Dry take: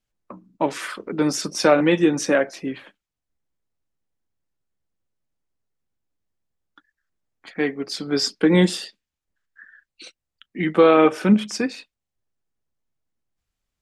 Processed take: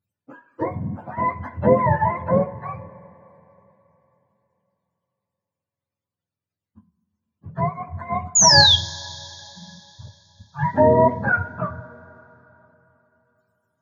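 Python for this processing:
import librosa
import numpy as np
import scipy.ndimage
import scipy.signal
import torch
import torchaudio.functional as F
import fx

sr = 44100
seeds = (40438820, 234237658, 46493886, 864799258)

y = fx.octave_mirror(x, sr, pivot_hz=550.0)
y = fx.spec_paint(y, sr, seeds[0], shape='fall', start_s=8.35, length_s=0.41, low_hz=3200.0, high_hz=7100.0, level_db=-14.0)
y = fx.rev_double_slope(y, sr, seeds[1], early_s=0.3, late_s=3.5, knee_db=-18, drr_db=9.0)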